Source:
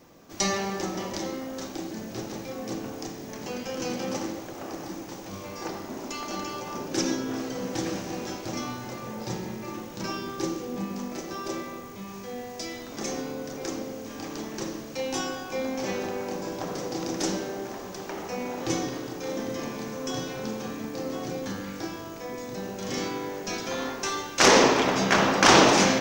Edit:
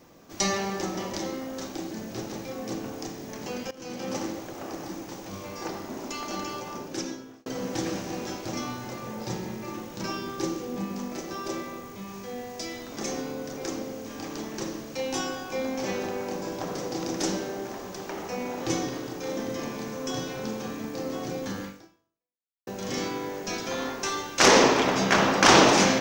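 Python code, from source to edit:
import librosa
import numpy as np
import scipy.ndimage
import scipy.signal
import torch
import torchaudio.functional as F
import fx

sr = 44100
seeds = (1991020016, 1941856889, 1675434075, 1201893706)

y = fx.edit(x, sr, fx.fade_in_from(start_s=3.71, length_s=0.47, floor_db=-18.5),
    fx.fade_out_span(start_s=6.53, length_s=0.93),
    fx.fade_out_span(start_s=21.65, length_s=1.02, curve='exp'), tone=tone)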